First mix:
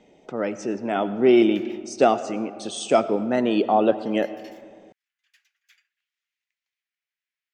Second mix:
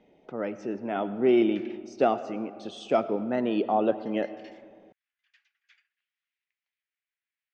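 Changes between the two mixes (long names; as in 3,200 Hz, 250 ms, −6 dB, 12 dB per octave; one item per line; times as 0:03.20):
speech −5.0 dB
master: add high-frequency loss of the air 180 metres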